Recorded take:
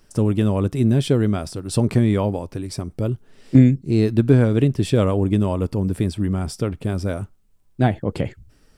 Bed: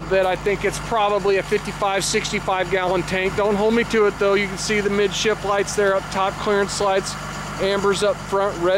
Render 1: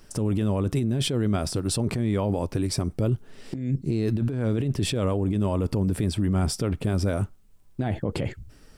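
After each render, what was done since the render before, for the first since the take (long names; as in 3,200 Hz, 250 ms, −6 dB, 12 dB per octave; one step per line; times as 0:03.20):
compressor whose output falls as the input rises −22 dBFS, ratio −1
brickwall limiter −16.5 dBFS, peak gain reduction 8 dB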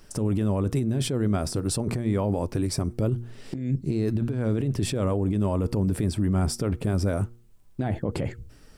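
hum removal 118 Hz, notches 4
dynamic equaliser 3,200 Hz, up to −6 dB, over −48 dBFS, Q 1.4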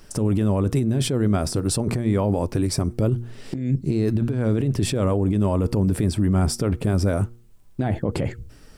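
level +4 dB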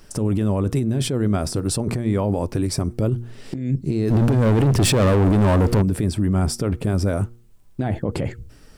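0:04.10–0:05.82: leveller curve on the samples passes 3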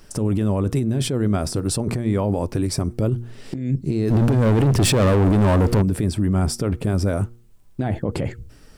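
no processing that can be heard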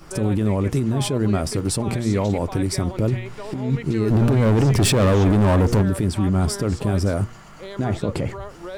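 mix in bed −16 dB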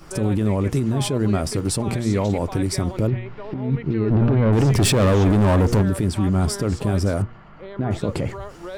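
0:03.07–0:04.53: high-frequency loss of the air 310 metres
0:07.22–0:07.91: high-frequency loss of the air 400 metres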